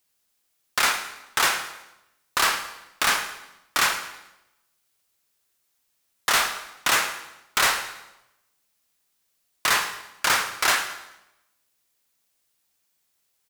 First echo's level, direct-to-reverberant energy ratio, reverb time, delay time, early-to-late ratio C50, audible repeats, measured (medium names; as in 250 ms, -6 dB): -16.5 dB, 8.0 dB, 0.90 s, 109 ms, 9.0 dB, 3